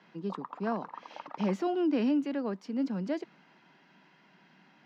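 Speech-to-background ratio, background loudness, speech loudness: 13.5 dB, -45.5 LUFS, -32.0 LUFS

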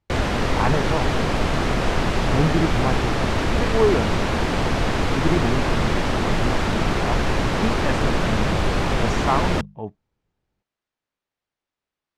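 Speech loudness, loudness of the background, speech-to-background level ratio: -27.0 LUFS, -22.5 LUFS, -4.5 dB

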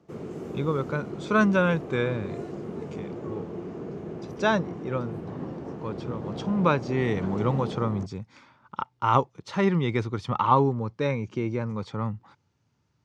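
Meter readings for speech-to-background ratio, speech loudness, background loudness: 9.5 dB, -27.0 LUFS, -36.5 LUFS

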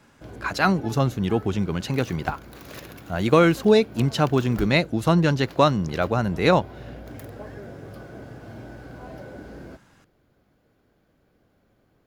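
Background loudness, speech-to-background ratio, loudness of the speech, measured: -41.0 LUFS, 19.0 dB, -22.0 LUFS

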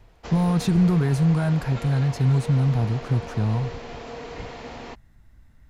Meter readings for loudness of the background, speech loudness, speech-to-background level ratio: -37.0 LUFS, -22.5 LUFS, 14.5 dB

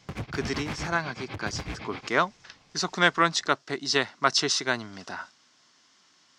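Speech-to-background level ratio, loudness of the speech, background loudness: 10.5 dB, -27.0 LUFS, -37.5 LUFS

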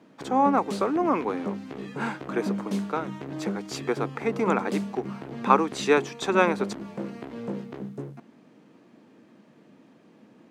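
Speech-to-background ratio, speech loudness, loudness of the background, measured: 8.0 dB, -26.5 LUFS, -34.5 LUFS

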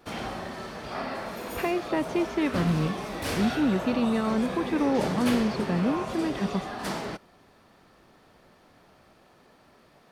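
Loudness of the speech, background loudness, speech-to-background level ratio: -28.0 LUFS, -33.5 LUFS, 5.5 dB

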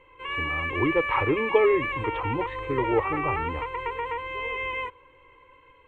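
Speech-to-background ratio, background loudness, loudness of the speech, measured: 2.5 dB, -29.5 LUFS, -27.0 LUFS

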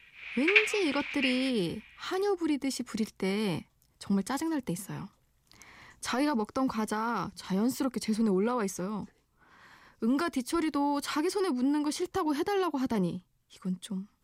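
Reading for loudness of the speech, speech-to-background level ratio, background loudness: -31.5 LUFS, -3.0 dB, -28.5 LUFS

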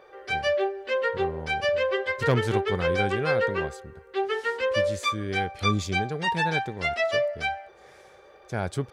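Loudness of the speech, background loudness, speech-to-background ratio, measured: -31.5 LUFS, -27.0 LUFS, -4.5 dB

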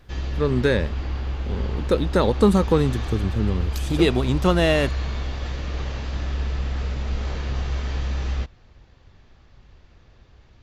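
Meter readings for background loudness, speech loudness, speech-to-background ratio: -28.5 LUFS, -22.0 LUFS, 6.5 dB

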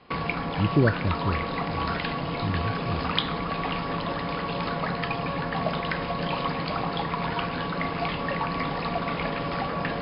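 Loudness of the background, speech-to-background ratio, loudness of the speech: -29.0 LUFS, -0.5 dB, -29.5 LUFS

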